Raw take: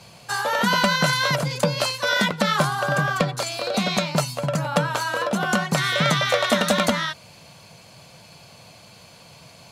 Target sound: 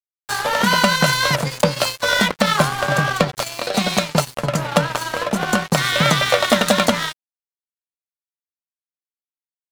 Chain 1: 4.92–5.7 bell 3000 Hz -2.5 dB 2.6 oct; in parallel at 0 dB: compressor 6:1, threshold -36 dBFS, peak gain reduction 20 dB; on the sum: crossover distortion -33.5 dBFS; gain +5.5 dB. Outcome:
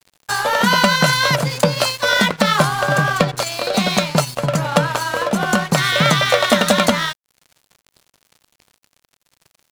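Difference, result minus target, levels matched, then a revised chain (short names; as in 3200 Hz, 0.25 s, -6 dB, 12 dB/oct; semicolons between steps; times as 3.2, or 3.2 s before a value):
crossover distortion: distortion -6 dB
4.92–5.7 bell 3000 Hz -2.5 dB 2.6 oct; in parallel at 0 dB: compressor 6:1, threshold -36 dBFS, peak gain reduction 20 dB; on the sum: crossover distortion -27 dBFS; gain +5.5 dB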